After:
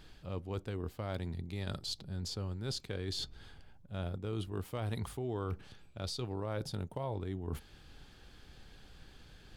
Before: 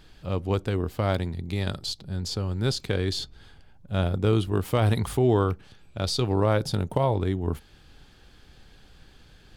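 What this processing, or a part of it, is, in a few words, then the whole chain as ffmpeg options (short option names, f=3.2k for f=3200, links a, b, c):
compression on the reversed sound: -af "areverse,acompressor=threshold=-33dB:ratio=5,areverse,volume=-3dB"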